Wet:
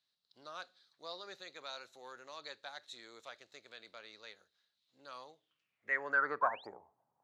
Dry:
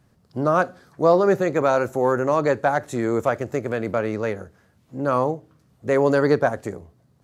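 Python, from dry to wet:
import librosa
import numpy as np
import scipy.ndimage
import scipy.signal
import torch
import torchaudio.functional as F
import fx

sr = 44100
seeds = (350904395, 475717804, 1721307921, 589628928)

y = fx.spec_paint(x, sr, seeds[0], shape='rise', start_s=6.41, length_s=0.26, low_hz=920.0, high_hz=5100.0, level_db=-29.0)
y = fx.filter_sweep_bandpass(y, sr, from_hz=3900.0, to_hz=860.0, start_s=5.32, end_s=6.64, q=7.2)
y = F.gain(torch.from_numpy(y), 1.0).numpy()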